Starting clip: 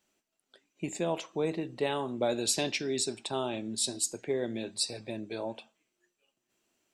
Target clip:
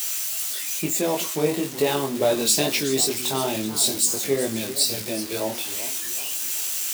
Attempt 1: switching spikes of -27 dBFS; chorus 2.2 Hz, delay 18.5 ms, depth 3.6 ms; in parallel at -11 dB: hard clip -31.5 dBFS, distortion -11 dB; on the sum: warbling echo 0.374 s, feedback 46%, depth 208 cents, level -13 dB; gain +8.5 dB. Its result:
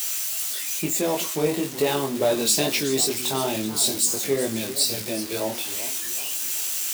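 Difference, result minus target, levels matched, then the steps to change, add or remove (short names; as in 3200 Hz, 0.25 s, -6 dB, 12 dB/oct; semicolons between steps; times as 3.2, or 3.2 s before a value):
hard clip: distortion +35 dB
change: hard clip -20 dBFS, distortion -46 dB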